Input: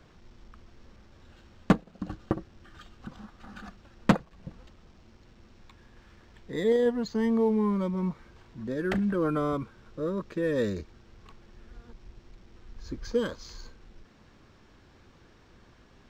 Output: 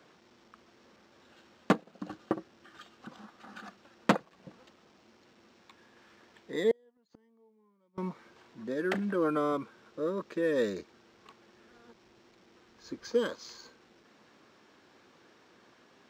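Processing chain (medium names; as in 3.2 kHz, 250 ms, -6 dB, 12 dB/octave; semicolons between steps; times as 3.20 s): high-pass 270 Hz 12 dB/octave; 6.71–7.98 s: inverted gate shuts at -27 dBFS, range -38 dB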